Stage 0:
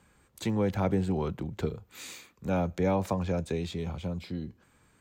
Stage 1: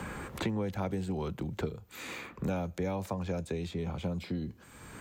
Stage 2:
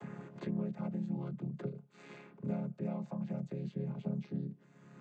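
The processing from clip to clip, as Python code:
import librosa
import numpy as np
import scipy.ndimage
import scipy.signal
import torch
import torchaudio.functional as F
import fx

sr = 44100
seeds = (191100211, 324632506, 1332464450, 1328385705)

y1 = fx.high_shelf(x, sr, hz=7300.0, db=4.0)
y1 = fx.band_squash(y1, sr, depth_pct=100)
y1 = y1 * 10.0 ** (-5.0 / 20.0)
y2 = fx.chord_vocoder(y1, sr, chord='major triad', root=49)
y2 = y2 * 10.0 ** (-2.5 / 20.0)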